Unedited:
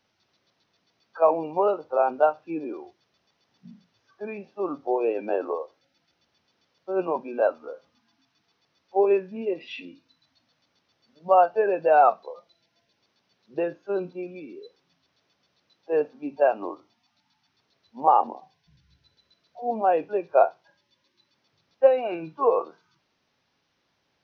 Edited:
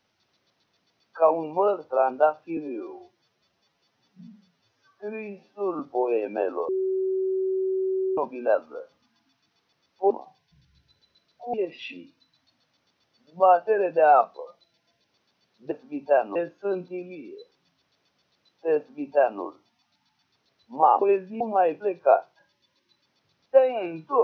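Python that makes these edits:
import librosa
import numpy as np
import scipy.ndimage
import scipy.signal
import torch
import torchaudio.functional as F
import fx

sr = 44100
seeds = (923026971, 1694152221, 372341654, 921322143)

y = fx.edit(x, sr, fx.stretch_span(start_s=2.57, length_s=2.15, factor=1.5),
    fx.bleep(start_s=5.61, length_s=1.49, hz=379.0, db=-22.5),
    fx.swap(start_s=9.03, length_s=0.39, other_s=18.26, other_length_s=1.43),
    fx.duplicate(start_s=16.02, length_s=0.64, to_s=13.6), tone=tone)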